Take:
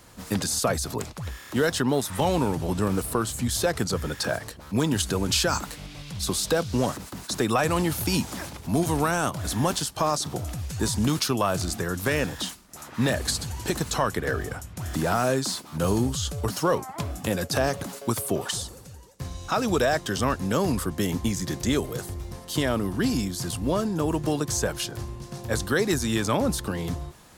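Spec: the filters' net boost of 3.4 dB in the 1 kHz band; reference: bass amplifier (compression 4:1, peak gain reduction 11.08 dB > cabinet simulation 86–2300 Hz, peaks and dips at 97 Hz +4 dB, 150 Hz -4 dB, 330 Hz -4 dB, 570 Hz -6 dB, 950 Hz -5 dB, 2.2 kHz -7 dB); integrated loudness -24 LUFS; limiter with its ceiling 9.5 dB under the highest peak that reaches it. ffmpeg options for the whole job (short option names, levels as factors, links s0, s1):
-af "equalizer=f=1000:t=o:g=8,alimiter=limit=0.15:level=0:latency=1,acompressor=threshold=0.02:ratio=4,highpass=f=86:w=0.5412,highpass=f=86:w=1.3066,equalizer=f=97:t=q:w=4:g=4,equalizer=f=150:t=q:w=4:g=-4,equalizer=f=330:t=q:w=4:g=-4,equalizer=f=570:t=q:w=4:g=-6,equalizer=f=950:t=q:w=4:g=-5,equalizer=f=2200:t=q:w=4:g=-7,lowpass=f=2300:w=0.5412,lowpass=f=2300:w=1.3066,volume=6.31"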